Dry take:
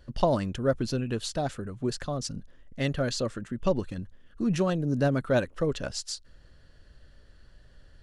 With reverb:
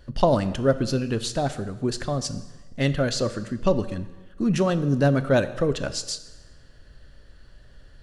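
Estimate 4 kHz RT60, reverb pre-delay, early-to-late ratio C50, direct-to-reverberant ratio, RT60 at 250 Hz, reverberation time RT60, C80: 1.1 s, 4 ms, 14.0 dB, 12.0 dB, 1.2 s, 1.2 s, 15.5 dB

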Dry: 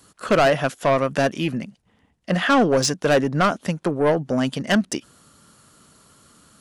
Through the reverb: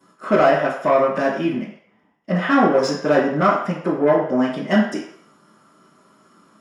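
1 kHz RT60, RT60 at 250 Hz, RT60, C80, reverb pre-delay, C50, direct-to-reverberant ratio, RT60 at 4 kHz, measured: 0.60 s, 0.45 s, 0.60 s, 8.0 dB, 3 ms, 4.5 dB, -9.5 dB, 0.60 s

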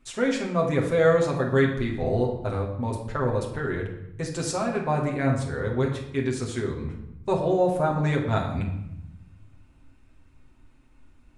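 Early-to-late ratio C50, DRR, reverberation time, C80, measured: 6.5 dB, -1.5 dB, 0.85 s, 9.0 dB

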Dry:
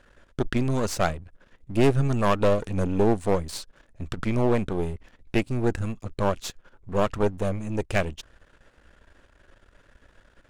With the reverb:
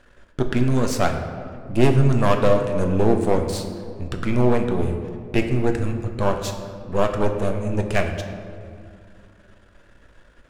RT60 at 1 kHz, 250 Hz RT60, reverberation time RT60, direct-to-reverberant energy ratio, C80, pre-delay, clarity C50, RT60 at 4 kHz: 2.0 s, 3.0 s, 2.2 s, 4.0 dB, 8.0 dB, 8 ms, 7.0 dB, 1.2 s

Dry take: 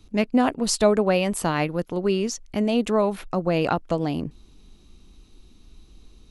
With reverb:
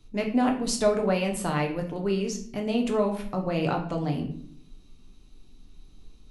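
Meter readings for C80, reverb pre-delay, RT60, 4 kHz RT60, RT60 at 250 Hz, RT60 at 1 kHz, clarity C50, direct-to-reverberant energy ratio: 13.0 dB, 5 ms, 0.60 s, 0.40 s, 0.85 s, 0.50 s, 9.0 dB, 1.5 dB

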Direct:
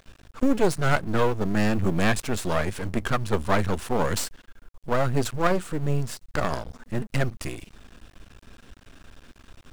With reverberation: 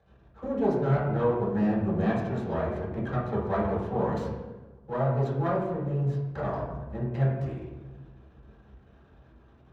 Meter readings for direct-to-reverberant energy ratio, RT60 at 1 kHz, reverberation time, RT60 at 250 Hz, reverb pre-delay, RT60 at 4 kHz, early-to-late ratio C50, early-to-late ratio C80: -11.0 dB, 1.1 s, 1.2 s, 1.5 s, 3 ms, 0.75 s, 1.5 dB, 4.0 dB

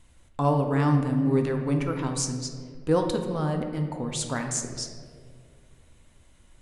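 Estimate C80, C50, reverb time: 7.5 dB, 5.5 dB, 2.1 s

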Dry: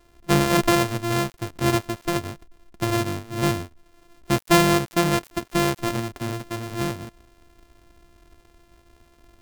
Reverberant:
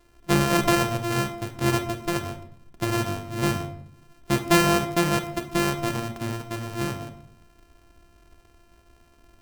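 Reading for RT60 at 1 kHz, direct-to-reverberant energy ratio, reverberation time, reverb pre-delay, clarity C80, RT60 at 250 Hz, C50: 0.70 s, 7.5 dB, 0.75 s, 24 ms, 13.5 dB, 0.95 s, 10.5 dB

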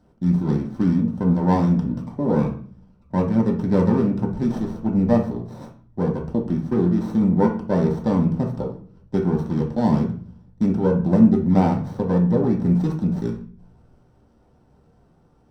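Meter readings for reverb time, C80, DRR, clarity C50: 0.45 s, 13.5 dB, -1.5 dB, 8.0 dB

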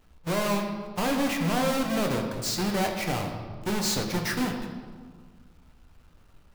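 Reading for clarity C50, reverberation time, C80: 5.0 dB, 1.7 s, 6.5 dB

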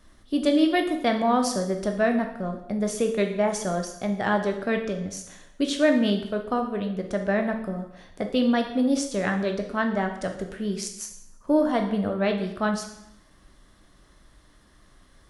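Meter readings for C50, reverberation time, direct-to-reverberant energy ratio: 8.0 dB, 0.75 s, 4.0 dB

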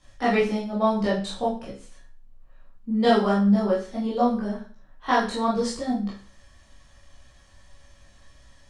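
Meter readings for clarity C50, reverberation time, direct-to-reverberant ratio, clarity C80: 5.0 dB, 0.45 s, -8.5 dB, 10.5 dB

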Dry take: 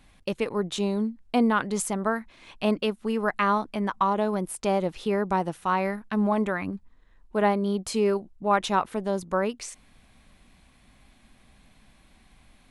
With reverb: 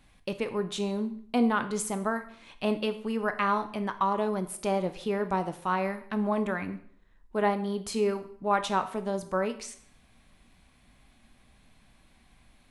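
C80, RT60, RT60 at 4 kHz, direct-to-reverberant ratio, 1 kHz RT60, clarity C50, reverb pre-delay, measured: 17.0 dB, 0.60 s, 0.55 s, 9.0 dB, 0.60 s, 13.0 dB, 6 ms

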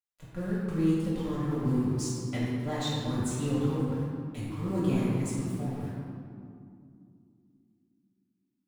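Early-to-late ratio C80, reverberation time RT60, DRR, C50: -0.5 dB, 2.4 s, -10.0 dB, -2.5 dB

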